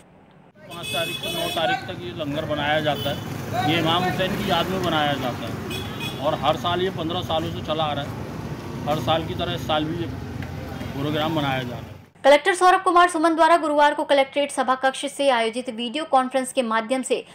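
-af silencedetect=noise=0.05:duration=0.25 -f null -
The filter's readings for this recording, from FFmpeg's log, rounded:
silence_start: 0.00
silence_end: 0.72 | silence_duration: 0.72
silence_start: 11.84
silence_end: 12.24 | silence_duration: 0.40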